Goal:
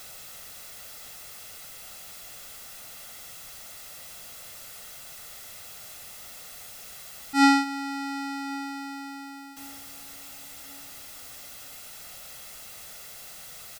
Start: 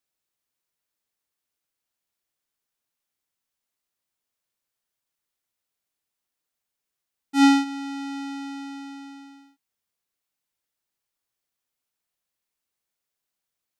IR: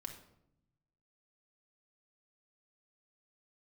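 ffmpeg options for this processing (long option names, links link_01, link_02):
-filter_complex "[0:a]aeval=exprs='val(0)+0.5*0.0126*sgn(val(0))':channel_layout=same,aecho=1:1:1.5:0.51,asplit=2[link_01][link_02];[link_02]adelay=1094,lowpass=frequency=2000:poles=1,volume=-21dB,asplit=2[link_03][link_04];[link_04]adelay=1094,lowpass=frequency=2000:poles=1,volume=0.41,asplit=2[link_05][link_06];[link_06]adelay=1094,lowpass=frequency=2000:poles=1,volume=0.41[link_07];[link_01][link_03][link_05][link_07]amix=inputs=4:normalize=0"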